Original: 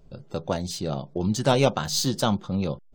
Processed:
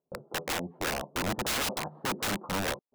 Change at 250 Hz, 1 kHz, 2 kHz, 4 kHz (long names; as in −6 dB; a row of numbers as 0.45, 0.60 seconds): −10.5, −4.5, +3.5, −4.5 decibels